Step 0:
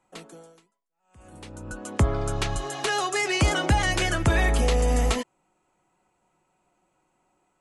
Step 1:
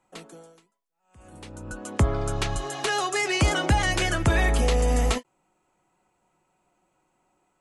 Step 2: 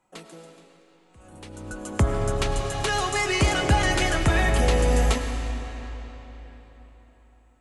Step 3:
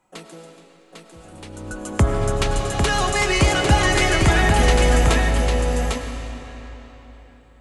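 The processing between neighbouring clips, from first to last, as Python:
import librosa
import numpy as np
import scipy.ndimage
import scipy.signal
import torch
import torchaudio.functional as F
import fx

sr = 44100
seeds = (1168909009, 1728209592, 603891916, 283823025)

y1 = fx.end_taper(x, sr, db_per_s=590.0)
y2 = fx.rev_freeverb(y1, sr, rt60_s=4.1, hf_ratio=0.8, predelay_ms=60, drr_db=5.0)
y3 = y2 + 10.0 ** (-4.5 / 20.0) * np.pad(y2, (int(800 * sr / 1000.0), 0))[:len(y2)]
y3 = y3 * 10.0 ** (4.0 / 20.0)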